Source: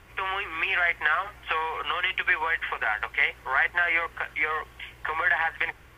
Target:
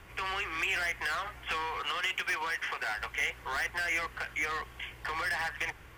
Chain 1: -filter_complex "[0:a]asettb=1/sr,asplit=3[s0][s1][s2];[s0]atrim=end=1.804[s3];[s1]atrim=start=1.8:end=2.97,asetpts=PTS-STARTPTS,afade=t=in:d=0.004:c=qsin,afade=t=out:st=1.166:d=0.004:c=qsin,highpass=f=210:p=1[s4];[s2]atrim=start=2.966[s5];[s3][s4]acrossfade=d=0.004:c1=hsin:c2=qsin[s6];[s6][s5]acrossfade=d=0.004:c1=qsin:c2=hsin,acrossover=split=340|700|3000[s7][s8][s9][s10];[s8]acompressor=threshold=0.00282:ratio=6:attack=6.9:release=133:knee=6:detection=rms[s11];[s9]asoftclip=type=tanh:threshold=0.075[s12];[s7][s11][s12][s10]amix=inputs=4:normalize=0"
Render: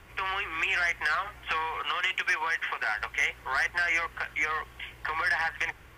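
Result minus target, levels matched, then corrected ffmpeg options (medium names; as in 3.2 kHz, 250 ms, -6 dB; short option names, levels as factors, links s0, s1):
saturation: distortion -7 dB
-filter_complex "[0:a]asettb=1/sr,asplit=3[s0][s1][s2];[s0]atrim=end=1.804[s3];[s1]atrim=start=1.8:end=2.97,asetpts=PTS-STARTPTS,afade=t=in:d=0.004:c=qsin,afade=t=out:st=1.166:d=0.004:c=qsin,highpass=f=210:p=1[s4];[s2]atrim=start=2.966[s5];[s3][s4]acrossfade=d=0.004:c1=hsin:c2=qsin[s6];[s6][s5]acrossfade=d=0.004:c1=qsin:c2=hsin,acrossover=split=340|700|3000[s7][s8][s9][s10];[s8]acompressor=threshold=0.00282:ratio=6:attack=6.9:release=133:knee=6:detection=rms[s11];[s9]asoftclip=type=tanh:threshold=0.0224[s12];[s7][s11][s12][s10]amix=inputs=4:normalize=0"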